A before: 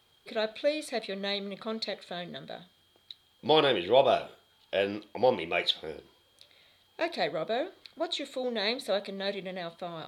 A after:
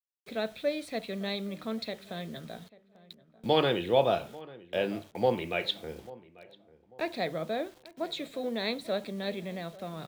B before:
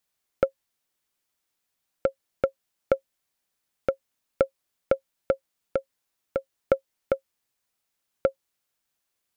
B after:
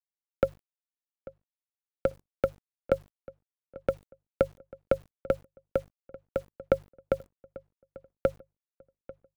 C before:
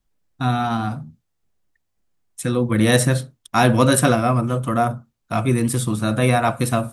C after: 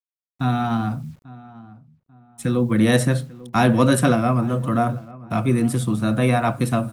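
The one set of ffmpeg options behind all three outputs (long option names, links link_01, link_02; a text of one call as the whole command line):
ffmpeg -i in.wav -filter_complex "[0:a]bandreject=frequency=50:width_type=h:width=6,bandreject=frequency=100:width_type=h:width=6,bandreject=frequency=150:width_type=h:width=6,agate=range=-7dB:threshold=-53dB:ratio=16:detection=peak,bass=frequency=250:gain=9,treble=frequency=4000:gain=-4,acrossover=split=160|2100[link_01][link_02][link_03];[link_01]acompressor=threshold=-26dB:ratio=10[link_04];[link_04][link_02][link_03]amix=inputs=3:normalize=0,acrusher=bits=8:mix=0:aa=0.000001,asplit=2[link_05][link_06];[link_06]adelay=842,lowpass=frequency=1600:poles=1,volume=-19.5dB,asplit=2[link_07][link_08];[link_08]adelay=842,lowpass=frequency=1600:poles=1,volume=0.33,asplit=2[link_09][link_10];[link_10]adelay=842,lowpass=frequency=1600:poles=1,volume=0.33[link_11];[link_07][link_09][link_11]amix=inputs=3:normalize=0[link_12];[link_05][link_12]amix=inputs=2:normalize=0,volume=-2.5dB" out.wav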